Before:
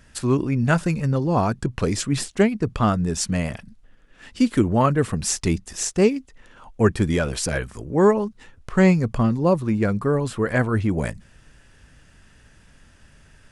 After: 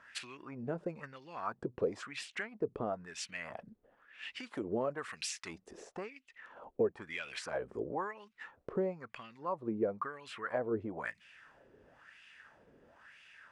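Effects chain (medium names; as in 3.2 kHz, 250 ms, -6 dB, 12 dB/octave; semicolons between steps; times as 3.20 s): 4.43–5.71 s: treble shelf 2.1 kHz +11 dB; compression 6:1, threshold -29 dBFS, peak gain reduction 17.5 dB; wah-wah 1 Hz 400–2700 Hz, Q 3; trim +6 dB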